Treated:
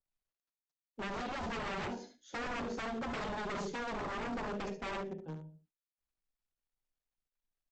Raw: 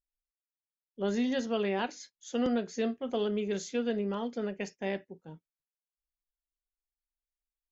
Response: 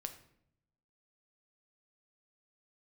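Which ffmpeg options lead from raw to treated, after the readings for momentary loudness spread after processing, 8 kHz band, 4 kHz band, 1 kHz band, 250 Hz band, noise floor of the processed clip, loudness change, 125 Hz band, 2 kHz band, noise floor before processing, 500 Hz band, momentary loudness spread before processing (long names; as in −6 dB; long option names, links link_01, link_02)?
7 LU, can't be measured, −4.5 dB, +1.5 dB, −9.5 dB, below −85 dBFS, −7.0 dB, −3.0 dB, +0.5 dB, below −85 dBFS, −9.0 dB, 8 LU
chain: -filter_complex "[0:a]lowpass=5200,asplit=2[link_01][link_02];[link_02]adelay=13,volume=-11.5dB[link_03];[link_01][link_03]amix=inputs=2:normalize=0[link_04];[1:a]atrim=start_sample=2205,afade=type=out:start_time=0.37:duration=0.01,atrim=end_sample=16758,asetrate=57330,aresample=44100[link_05];[link_04][link_05]afir=irnorm=-1:irlink=0,asplit=2[link_06][link_07];[link_07]aeval=exprs='val(0)*gte(abs(val(0)),0.00794)':channel_layout=same,volume=-4dB[link_08];[link_06][link_08]amix=inputs=2:normalize=0,acrossover=split=280|780[link_09][link_10][link_11];[link_09]acompressor=threshold=-38dB:ratio=4[link_12];[link_10]acompressor=threshold=-36dB:ratio=4[link_13];[link_11]acompressor=threshold=-42dB:ratio=4[link_14];[link_12][link_13][link_14]amix=inputs=3:normalize=0,tiltshelf=frequency=1400:gain=4,aecho=1:1:71:0.376,adynamicequalizer=threshold=0.002:dfrequency=1900:dqfactor=1.1:tfrequency=1900:tqfactor=1.1:attack=5:release=100:ratio=0.375:range=1.5:mode=cutabove:tftype=bell,aresample=16000,aeval=exprs='0.0178*(abs(mod(val(0)/0.0178+3,4)-2)-1)':channel_layout=same,aresample=44100,volume=1.5dB" -ar 48000 -c:a libopus -b:a 48k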